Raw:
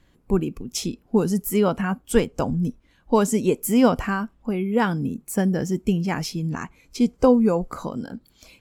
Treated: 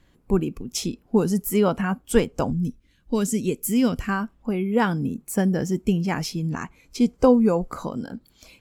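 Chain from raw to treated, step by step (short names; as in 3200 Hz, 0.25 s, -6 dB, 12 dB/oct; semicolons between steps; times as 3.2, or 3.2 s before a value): 2.52–4.09 bell 830 Hz -14.5 dB 1.6 oct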